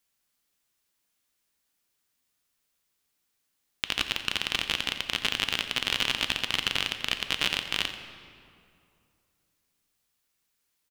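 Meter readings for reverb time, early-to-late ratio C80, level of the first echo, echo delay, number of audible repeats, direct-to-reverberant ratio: 2.5 s, 8.5 dB, −13.5 dB, 87 ms, 1, 7.0 dB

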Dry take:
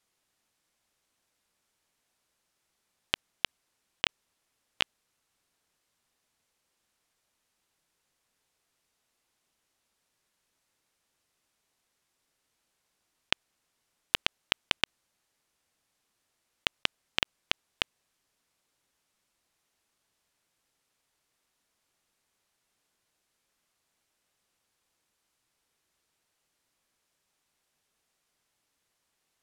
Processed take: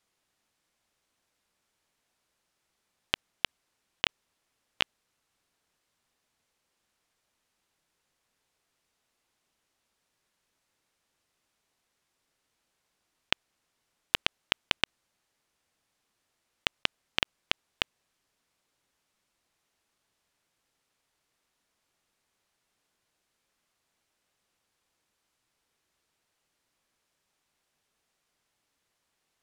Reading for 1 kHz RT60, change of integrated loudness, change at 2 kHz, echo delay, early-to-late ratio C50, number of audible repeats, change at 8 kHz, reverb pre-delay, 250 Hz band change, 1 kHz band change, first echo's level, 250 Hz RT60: no reverb audible, +0.5 dB, +0.5 dB, no echo audible, no reverb audible, no echo audible, −1.5 dB, no reverb audible, +1.0 dB, +1.0 dB, no echo audible, no reverb audible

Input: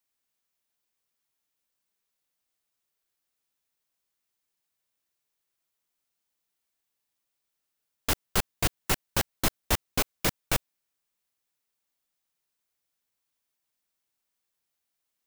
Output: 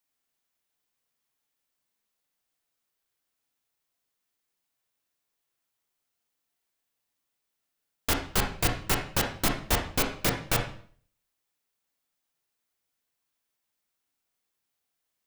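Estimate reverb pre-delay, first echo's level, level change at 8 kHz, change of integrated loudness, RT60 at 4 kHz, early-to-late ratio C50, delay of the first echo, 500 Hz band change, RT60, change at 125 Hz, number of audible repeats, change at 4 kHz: 25 ms, no echo audible, 0.0 dB, +1.0 dB, 0.45 s, 7.0 dB, no echo audible, +2.0 dB, 0.50 s, +2.0 dB, no echo audible, +1.0 dB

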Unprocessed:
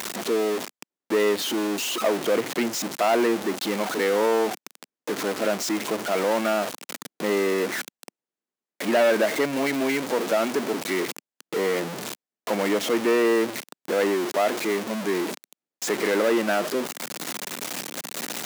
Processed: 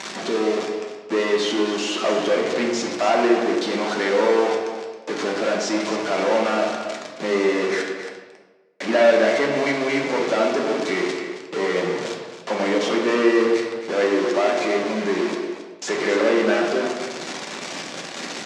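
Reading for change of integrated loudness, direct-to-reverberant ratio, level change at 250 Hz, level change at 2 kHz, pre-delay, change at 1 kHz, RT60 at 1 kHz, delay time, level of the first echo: +3.0 dB, −1.5 dB, +3.5 dB, +3.5 dB, 3 ms, +3.5 dB, 1.2 s, 270 ms, −10.0 dB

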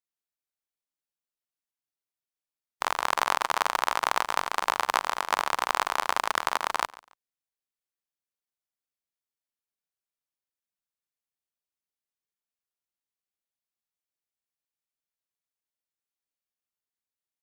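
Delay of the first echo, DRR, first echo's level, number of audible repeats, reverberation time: 142 ms, no reverb audible, −21.0 dB, 2, no reverb audible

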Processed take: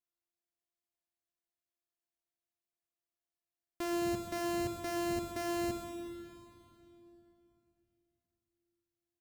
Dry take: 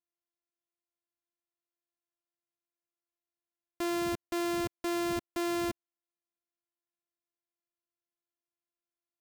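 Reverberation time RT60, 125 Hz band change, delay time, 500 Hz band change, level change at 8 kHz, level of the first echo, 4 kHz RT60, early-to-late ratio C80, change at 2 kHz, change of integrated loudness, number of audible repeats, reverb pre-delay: 3.0 s, +1.0 dB, 128 ms, −2.0 dB, −2.0 dB, −12.0 dB, 2.6 s, 5.0 dB, −3.5 dB, −3.5 dB, 1, 11 ms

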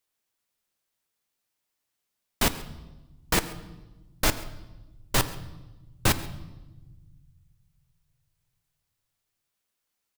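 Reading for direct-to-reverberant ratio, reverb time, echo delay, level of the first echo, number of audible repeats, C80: 11.0 dB, 1.1 s, 135 ms, −21.0 dB, 1, 15.0 dB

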